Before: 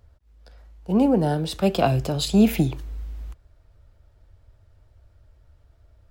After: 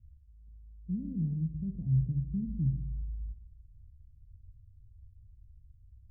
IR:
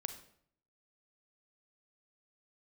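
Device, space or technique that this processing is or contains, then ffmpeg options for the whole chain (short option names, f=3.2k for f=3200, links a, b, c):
club heard from the street: -filter_complex "[0:a]alimiter=limit=-17dB:level=0:latency=1:release=46,lowpass=f=170:w=0.5412,lowpass=f=170:w=1.3066[a];[1:a]atrim=start_sample=2205[b];[a][b]afir=irnorm=-1:irlink=0"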